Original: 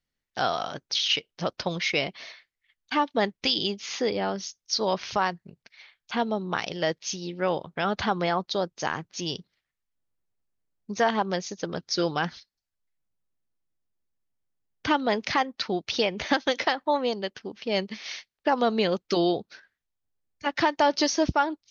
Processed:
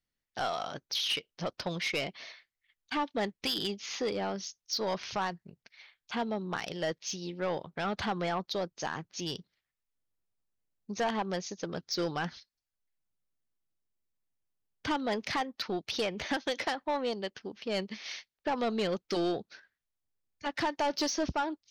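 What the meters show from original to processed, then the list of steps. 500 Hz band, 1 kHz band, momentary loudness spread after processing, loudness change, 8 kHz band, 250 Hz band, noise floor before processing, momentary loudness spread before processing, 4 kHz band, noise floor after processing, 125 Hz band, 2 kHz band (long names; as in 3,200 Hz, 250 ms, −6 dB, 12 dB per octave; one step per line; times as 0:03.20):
−6.5 dB, −7.5 dB, 8 LU, −6.5 dB, can't be measured, −6.0 dB, below −85 dBFS, 9 LU, −6.5 dB, below −85 dBFS, −5.5 dB, −7.0 dB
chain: soft clipping −20.5 dBFS, distortion −12 dB
level −4 dB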